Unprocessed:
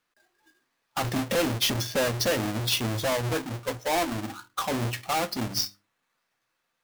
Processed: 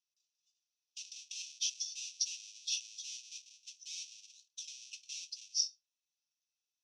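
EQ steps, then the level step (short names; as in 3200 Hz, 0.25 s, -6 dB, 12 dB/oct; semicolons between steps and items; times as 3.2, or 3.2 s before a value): rippled Chebyshev high-pass 2500 Hz, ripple 3 dB; ladder low-pass 6100 Hz, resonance 80%; -2.5 dB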